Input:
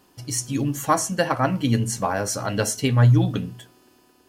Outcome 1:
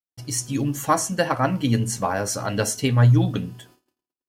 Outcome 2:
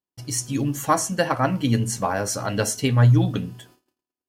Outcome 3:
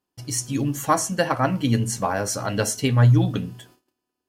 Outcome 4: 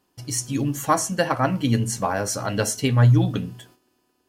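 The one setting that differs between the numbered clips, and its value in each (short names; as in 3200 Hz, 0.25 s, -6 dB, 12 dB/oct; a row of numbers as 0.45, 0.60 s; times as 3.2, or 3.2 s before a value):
gate, range: -54, -37, -24, -11 dB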